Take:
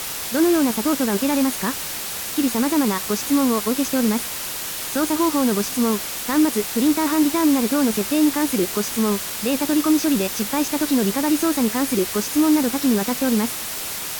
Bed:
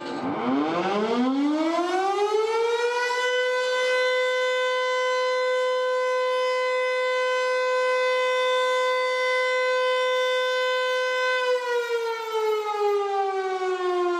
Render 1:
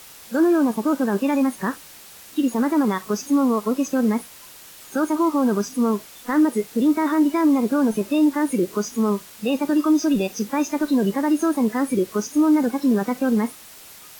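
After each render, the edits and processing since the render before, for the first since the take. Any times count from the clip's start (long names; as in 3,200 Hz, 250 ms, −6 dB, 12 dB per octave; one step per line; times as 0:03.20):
noise reduction from a noise print 15 dB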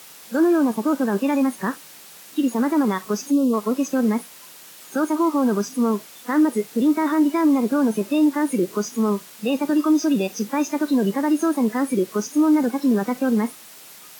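0:03.31–0:03.53: gain on a spectral selection 680–2,500 Hz −19 dB
high-pass filter 130 Hz 24 dB per octave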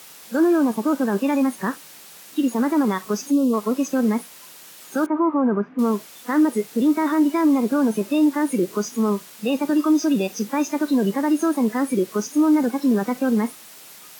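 0:05.06–0:05.79: low-pass filter 1,900 Hz 24 dB per octave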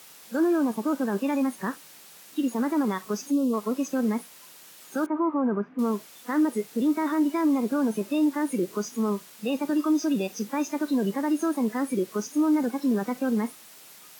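level −5.5 dB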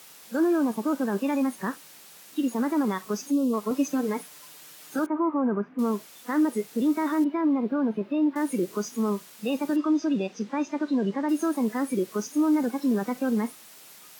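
0:03.70–0:04.99: comb filter 6.7 ms
0:07.24–0:08.36: high-frequency loss of the air 370 metres
0:09.76–0:11.29: high-frequency loss of the air 130 metres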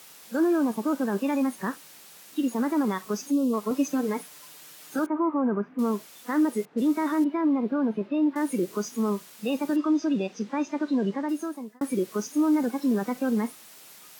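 0:06.65–0:08.43: low-pass that shuts in the quiet parts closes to 1,100 Hz, open at −23 dBFS
0:11.08–0:11.81: fade out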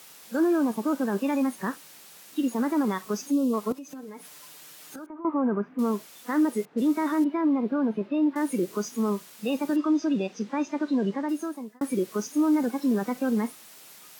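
0:03.72–0:05.25: downward compressor 5 to 1, threshold −39 dBFS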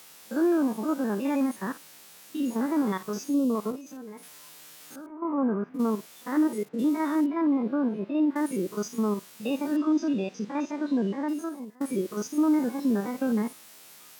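spectrum averaged block by block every 50 ms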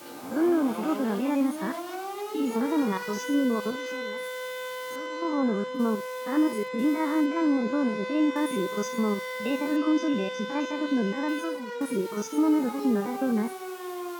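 mix in bed −11.5 dB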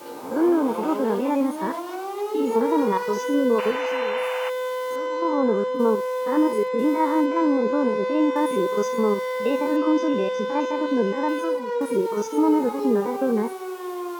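0:03.58–0:04.50: sound drawn into the spectrogram noise 600–3,100 Hz −35 dBFS
hollow resonant body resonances 470/920 Hz, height 11 dB, ringing for 20 ms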